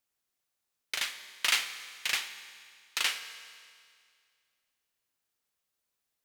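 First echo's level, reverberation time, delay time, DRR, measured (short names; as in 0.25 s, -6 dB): none, 2.1 s, none, 9.5 dB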